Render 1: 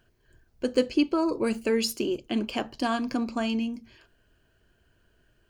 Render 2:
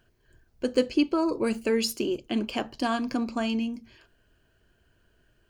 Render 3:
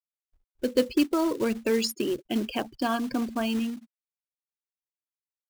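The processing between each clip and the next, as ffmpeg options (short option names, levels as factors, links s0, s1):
-af anull
-af "afftfilt=real='re*gte(hypot(re,im),0.02)':imag='im*gte(hypot(re,im),0.02)':win_size=1024:overlap=0.75,acrusher=bits=4:mode=log:mix=0:aa=0.000001"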